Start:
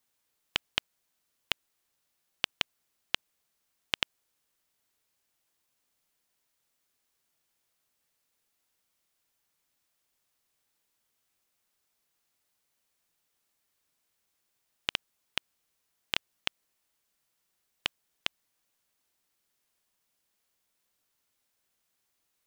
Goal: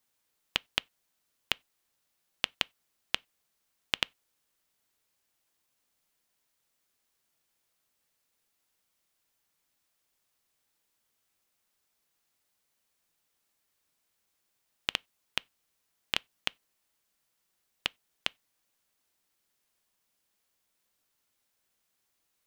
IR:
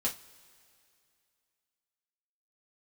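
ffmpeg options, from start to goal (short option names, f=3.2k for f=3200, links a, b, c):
-filter_complex "[0:a]asplit=2[a][b];[1:a]atrim=start_sample=2205,afade=t=out:st=0.15:d=0.01,atrim=end_sample=7056,highshelf=f=5.5k:g=-12[c];[b][c]afir=irnorm=-1:irlink=0,volume=-25dB[d];[a][d]amix=inputs=2:normalize=0"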